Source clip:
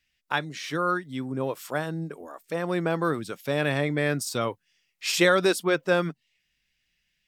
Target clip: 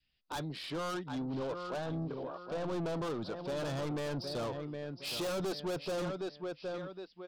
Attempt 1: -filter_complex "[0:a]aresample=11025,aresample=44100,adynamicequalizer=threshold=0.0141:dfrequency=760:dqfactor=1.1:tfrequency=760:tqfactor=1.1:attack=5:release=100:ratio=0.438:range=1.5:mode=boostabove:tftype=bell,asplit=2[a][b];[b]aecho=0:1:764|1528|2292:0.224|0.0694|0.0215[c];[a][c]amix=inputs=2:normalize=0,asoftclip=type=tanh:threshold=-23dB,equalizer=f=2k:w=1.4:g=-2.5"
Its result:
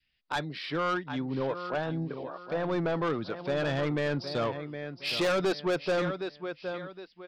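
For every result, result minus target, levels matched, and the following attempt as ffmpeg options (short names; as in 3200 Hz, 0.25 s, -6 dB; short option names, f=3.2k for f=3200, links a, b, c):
2000 Hz band +4.5 dB; soft clip: distortion -5 dB
-filter_complex "[0:a]aresample=11025,aresample=44100,adynamicequalizer=threshold=0.0141:dfrequency=760:dqfactor=1.1:tfrequency=760:tqfactor=1.1:attack=5:release=100:ratio=0.438:range=1.5:mode=boostabove:tftype=bell,asplit=2[a][b];[b]aecho=0:1:764|1528|2292:0.224|0.0694|0.0215[c];[a][c]amix=inputs=2:normalize=0,asoftclip=type=tanh:threshold=-23dB,equalizer=f=2k:w=1.4:g=-10.5"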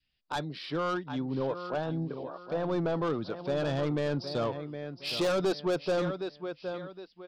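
soft clip: distortion -5 dB
-filter_complex "[0:a]aresample=11025,aresample=44100,adynamicequalizer=threshold=0.0141:dfrequency=760:dqfactor=1.1:tfrequency=760:tqfactor=1.1:attack=5:release=100:ratio=0.438:range=1.5:mode=boostabove:tftype=bell,asplit=2[a][b];[b]aecho=0:1:764|1528|2292:0.224|0.0694|0.0215[c];[a][c]amix=inputs=2:normalize=0,asoftclip=type=tanh:threshold=-32.5dB,equalizer=f=2k:w=1.4:g=-10.5"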